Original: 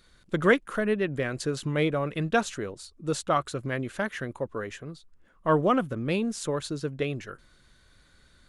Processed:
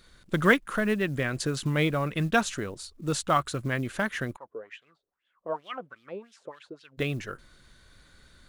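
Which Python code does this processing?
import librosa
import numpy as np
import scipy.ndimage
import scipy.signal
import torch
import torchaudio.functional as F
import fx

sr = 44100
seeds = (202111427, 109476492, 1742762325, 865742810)

y = fx.quant_float(x, sr, bits=4)
y = fx.dynamic_eq(y, sr, hz=460.0, q=1.1, threshold_db=-37.0, ratio=4.0, max_db=-6)
y = fx.wah_lfo(y, sr, hz=fx.line((4.35, 1.7), (6.97, 4.4)), low_hz=440.0, high_hz=3400.0, q=4.6, at=(4.35, 6.97), fade=0.02)
y = y * 10.0 ** (3.0 / 20.0)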